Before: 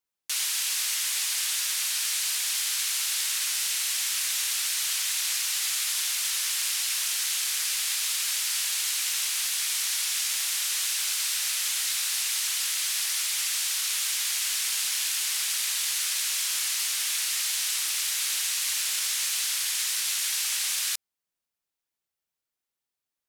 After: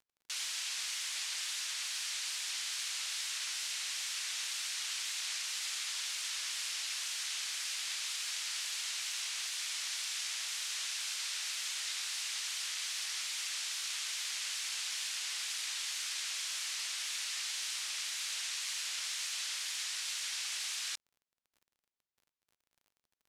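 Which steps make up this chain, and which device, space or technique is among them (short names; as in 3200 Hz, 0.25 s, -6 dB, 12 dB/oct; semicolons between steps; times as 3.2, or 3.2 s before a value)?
lo-fi chain (LPF 6900 Hz 12 dB/oct; wow and flutter; crackle 36/s -48 dBFS); gain -7.5 dB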